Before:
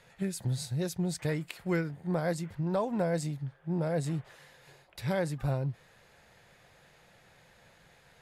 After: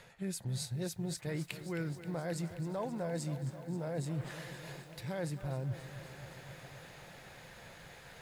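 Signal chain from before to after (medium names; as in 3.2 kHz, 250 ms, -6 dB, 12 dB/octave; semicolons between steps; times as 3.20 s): reverse; compression 6:1, threshold -43 dBFS, peak gain reduction 17 dB; reverse; bit-crushed delay 265 ms, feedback 80%, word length 11-bit, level -13 dB; trim +7 dB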